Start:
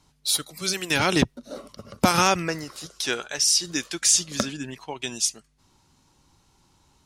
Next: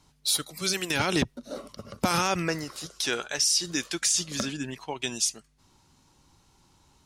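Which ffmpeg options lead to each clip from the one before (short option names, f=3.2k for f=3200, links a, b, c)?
-af "alimiter=limit=-14dB:level=0:latency=1:release=44"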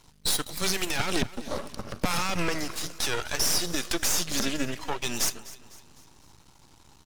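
-af "alimiter=limit=-20.5dB:level=0:latency=1:release=63,aeval=exprs='max(val(0),0)':c=same,aecho=1:1:252|504|756|1008:0.126|0.0579|0.0266|0.0123,volume=9dB"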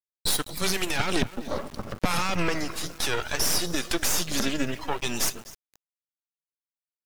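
-af "afftdn=nr=13:nf=-46,equalizer=f=6k:t=o:w=1.1:g=-3,aeval=exprs='val(0)*gte(abs(val(0)),0.00794)':c=same,volume=2dB"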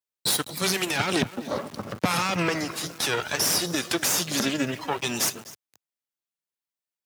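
-af "highpass=f=100:w=0.5412,highpass=f=100:w=1.3066,volume=2dB"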